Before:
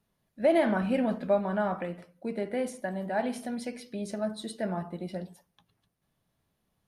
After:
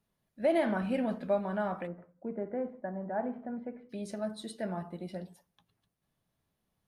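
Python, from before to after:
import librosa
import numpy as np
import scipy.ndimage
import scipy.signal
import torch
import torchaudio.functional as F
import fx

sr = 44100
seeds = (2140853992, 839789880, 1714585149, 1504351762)

y = fx.lowpass(x, sr, hz=1500.0, slope=24, at=(1.86, 3.89), fade=0.02)
y = y * librosa.db_to_amplitude(-4.0)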